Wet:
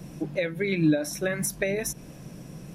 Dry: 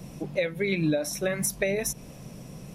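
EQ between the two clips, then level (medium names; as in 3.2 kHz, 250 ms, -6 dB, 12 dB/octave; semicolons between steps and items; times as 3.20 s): graphic EQ with 31 bands 160 Hz +4 dB, 315 Hz +7 dB, 1.6 kHz +6 dB; -1.5 dB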